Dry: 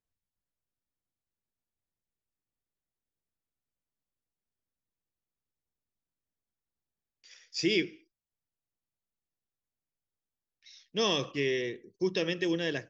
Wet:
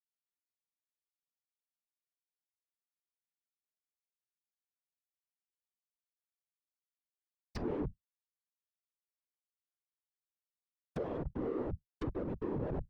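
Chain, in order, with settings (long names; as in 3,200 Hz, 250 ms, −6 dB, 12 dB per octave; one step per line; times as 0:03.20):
comparator with hysteresis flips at −32 dBFS
reversed playback
downward compressor 10 to 1, threshold −53 dBFS, peak gain reduction 17 dB
reversed playback
random phases in short frames
treble cut that deepens with the level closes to 780 Hz, closed at −52 dBFS
level +17 dB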